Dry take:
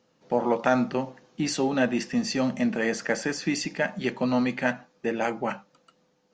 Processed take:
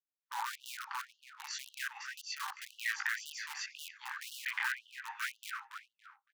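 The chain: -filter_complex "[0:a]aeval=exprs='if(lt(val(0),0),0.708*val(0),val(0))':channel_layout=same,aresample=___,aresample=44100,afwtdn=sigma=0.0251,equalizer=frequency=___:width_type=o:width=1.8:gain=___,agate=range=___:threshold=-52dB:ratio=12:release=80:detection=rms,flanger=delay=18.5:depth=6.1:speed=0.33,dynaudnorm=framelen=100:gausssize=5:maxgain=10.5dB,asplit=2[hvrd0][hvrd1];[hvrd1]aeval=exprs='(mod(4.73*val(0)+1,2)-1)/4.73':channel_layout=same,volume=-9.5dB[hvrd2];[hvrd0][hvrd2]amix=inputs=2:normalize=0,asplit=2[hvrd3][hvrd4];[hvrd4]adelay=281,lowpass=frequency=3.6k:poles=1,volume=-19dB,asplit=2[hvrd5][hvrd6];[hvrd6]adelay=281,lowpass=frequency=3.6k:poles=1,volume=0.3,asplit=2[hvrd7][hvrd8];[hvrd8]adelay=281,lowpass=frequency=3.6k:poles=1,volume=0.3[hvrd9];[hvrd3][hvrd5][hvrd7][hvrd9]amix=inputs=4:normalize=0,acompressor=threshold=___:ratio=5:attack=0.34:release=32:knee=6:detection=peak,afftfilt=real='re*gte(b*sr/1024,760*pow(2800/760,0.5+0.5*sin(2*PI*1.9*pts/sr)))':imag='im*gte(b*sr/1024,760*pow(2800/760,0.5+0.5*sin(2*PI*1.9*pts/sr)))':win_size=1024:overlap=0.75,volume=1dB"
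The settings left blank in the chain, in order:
16000, 1.3k, 6.5, -27dB, -28dB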